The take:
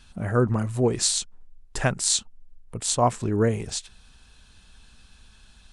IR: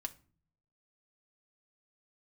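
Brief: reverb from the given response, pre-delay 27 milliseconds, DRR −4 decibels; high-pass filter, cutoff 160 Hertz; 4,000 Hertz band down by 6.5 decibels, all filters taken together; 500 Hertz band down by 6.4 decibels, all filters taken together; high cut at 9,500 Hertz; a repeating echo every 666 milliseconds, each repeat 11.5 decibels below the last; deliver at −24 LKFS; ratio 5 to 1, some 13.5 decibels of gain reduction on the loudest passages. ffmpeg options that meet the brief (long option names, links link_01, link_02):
-filter_complex "[0:a]highpass=160,lowpass=9500,equalizer=frequency=500:width_type=o:gain=-8,equalizer=frequency=4000:width_type=o:gain=-7.5,acompressor=threshold=-35dB:ratio=5,aecho=1:1:666|1332|1998:0.266|0.0718|0.0194,asplit=2[link_01][link_02];[1:a]atrim=start_sample=2205,adelay=27[link_03];[link_02][link_03]afir=irnorm=-1:irlink=0,volume=6dB[link_04];[link_01][link_04]amix=inputs=2:normalize=0,volume=9dB"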